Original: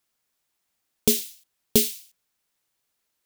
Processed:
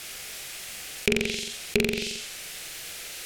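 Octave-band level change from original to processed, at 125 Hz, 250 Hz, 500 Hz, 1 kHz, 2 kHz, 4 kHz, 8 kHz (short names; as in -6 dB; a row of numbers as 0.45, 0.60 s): +1.0, -1.0, +0.5, +6.0, +14.5, +1.5, -4.5 dB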